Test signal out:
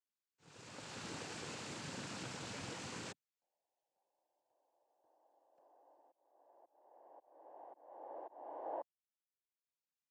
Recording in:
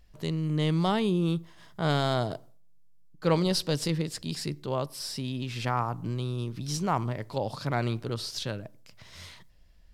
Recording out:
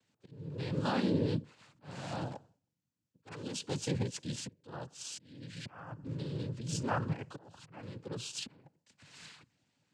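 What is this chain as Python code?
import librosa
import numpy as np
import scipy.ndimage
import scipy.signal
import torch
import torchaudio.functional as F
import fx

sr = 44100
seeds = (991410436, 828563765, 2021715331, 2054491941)

y = fx.notch_comb(x, sr, f0_hz=580.0)
y = (np.mod(10.0 ** (16.0 / 20.0) * y + 1.0, 2.0) - 1.0) / 10.0 ** (16.0 / 20.0)
y = fx.auto_swell(y, sr, attack_ms=701.0)
y = fx.noise_vocoder(y, sr, seeds[0], bands=8)
y = y * librosa.db_to_amplitude(-4.0)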